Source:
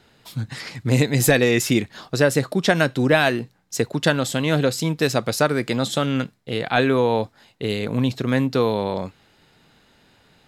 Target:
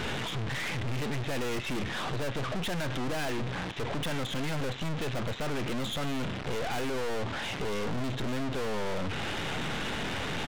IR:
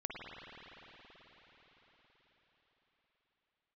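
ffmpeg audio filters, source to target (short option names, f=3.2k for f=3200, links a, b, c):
-filter_complex "[0:a]aeval=exprs='val(0)+0.5*0.0531*sgn(val(0))':c=same,asplit=2[a][b];[b]acompressor=threshold=-31dB:ratio=6,volume=-1.5dB[c];[a][c]amix=inputs=2:normalize=0,aresample=8000,aresample=44100,aeval=exprs='(tanh(39.8*val(0)+0.75)-tanh(0.75))/39.8':c=same"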